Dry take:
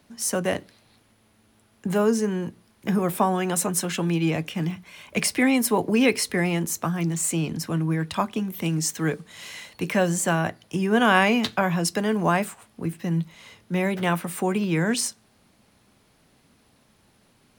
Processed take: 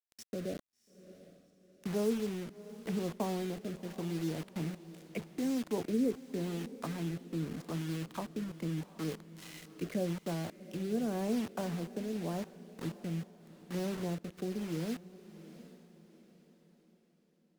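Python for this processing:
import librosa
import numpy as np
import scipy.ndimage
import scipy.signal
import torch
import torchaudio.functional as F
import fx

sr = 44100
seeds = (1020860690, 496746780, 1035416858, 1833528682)

p1 = fx.env_lowpass_down(x, sr, base_hz=470.0, full_db=-22.0)
p2 = fx.low_shelf(p1, sr, hz=130.0, db=-10.5)
p3 = fx.quant_dither(p2, sr, seeds[0], bits=6, dither='none')
p4 = fx.rotary(p3, sr, hz=0.85)
p5 = p4 + fx.echo_diffused(p4, sr, ms=735, feedback_pct=41, wet_db=-15.5, dry=0)
y = p5 * librosa.db_to_amplitude(-7.0)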